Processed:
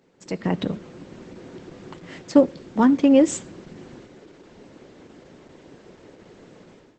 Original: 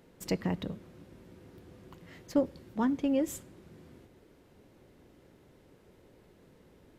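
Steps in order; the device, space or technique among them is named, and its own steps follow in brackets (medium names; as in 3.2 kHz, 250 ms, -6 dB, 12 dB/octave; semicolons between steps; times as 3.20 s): 1.17–2.92 s: high-pass 45 Hz 12 dB/octave; video call (high-pass 160 Hz 12 dB/octave; level rider gain up to 15 dB; Opus 12 kbps 48 kHz)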